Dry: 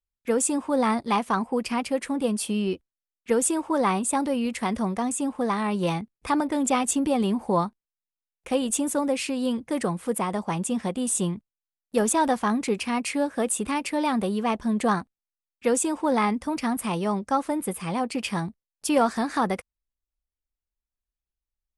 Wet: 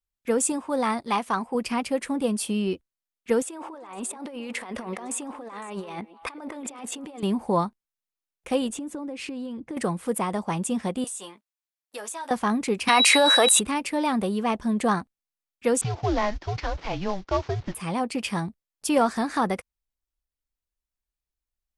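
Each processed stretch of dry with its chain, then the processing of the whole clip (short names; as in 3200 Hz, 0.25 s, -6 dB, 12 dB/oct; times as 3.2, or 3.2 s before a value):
0.52–1.55 low shelf 420 Hz -5.5 dB + mismatched tape noise reduction decoder only
3.42–7.23 tone controls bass -15 dB, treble -8 dB + negative-ratio compressor -37 dBFS + delay with a stepping band-pass 0.127 s, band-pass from 400 Hz, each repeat 1.4 oct, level -10 dB
8.68–9.77 LPF 2900 Hz 6 dB/oct + bell 310 Hz +8 dB 0.33 oct + compressor 16:1, threshold -30 dBFS
11.04–12.31 HPF 730 Hz + doubler 15 ms -8 dB + compressor 4:1, threshold -33 dBFS
12.87–13.59 HPF 680 Hz + whine 3900 Hz -39 dBFS + fast leveller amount 100%
15.81–17.75 CVSD 32 kbps + HPF 260 Hz + frequency shift -200 Hz
whole clip: dry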